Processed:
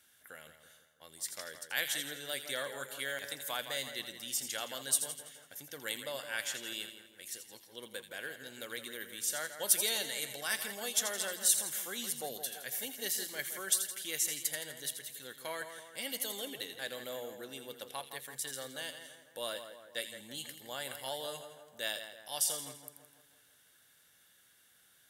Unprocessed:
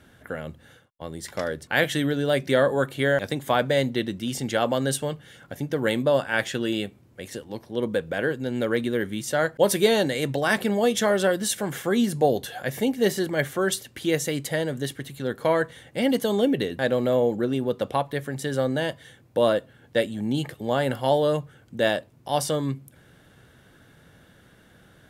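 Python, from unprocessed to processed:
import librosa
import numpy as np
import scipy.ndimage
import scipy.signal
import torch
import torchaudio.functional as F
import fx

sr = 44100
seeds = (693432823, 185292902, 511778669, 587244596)

y = scipy.signal.lfilter([1.0, -0.97], [1.0], x)
y = fx.echo_split(y, sr, split_hz=2000.0, low_ms=165, high_ms=83, feedback_pct=52, wet_db=-9)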